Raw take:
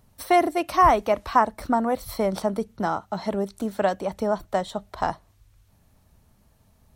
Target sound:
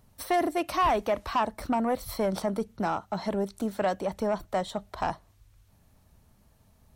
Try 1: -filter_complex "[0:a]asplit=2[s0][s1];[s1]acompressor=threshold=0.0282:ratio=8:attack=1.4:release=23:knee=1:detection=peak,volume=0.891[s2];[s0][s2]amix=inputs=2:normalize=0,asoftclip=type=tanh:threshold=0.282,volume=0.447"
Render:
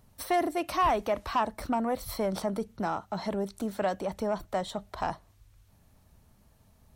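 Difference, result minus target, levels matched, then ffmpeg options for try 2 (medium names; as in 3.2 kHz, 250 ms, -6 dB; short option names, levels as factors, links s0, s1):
compression: peak gain reduction +9.5 dB
-filter_complex "[0:a]asplit=2[s0][s1];[s1]acompressor=threshold=0.1:ratio=8:attack=1.4:release=23:knee=1:detection=peak,volume=0.891[s2];[s0][s2]amix=inputs=2:normalize=0,asoftclip=type=tanh:threshold=0.282,volume=0.447"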